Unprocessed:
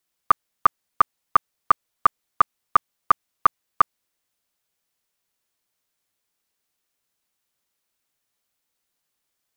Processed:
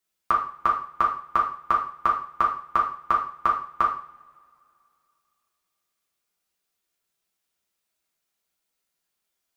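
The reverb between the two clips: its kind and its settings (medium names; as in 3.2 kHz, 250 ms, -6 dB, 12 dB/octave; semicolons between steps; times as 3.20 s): two-slope reverb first 0.48 s, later 2.6 s, from -26 dB, DRR -2 dB; trim -5.5 dB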